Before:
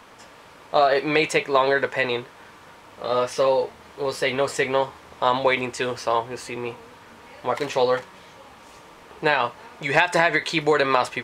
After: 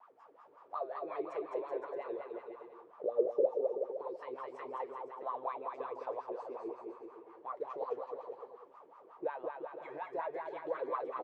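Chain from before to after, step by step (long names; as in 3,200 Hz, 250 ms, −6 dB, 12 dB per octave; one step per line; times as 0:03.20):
0:03.04–0:03.51: low shelf with overshoot 710 Hz +12.5 dB, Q 3
downward compressor 2 to 1, threshold −27 dBFS, peak gain reduction 15 dB
LFO wah 5.5 Hz 350–1,200 Hz, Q 10
pitch vibrato 3.1 Hz 72 cents
bouncing-ball delay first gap 210 ms, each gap 0.8×, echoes 5
level −2.5 dB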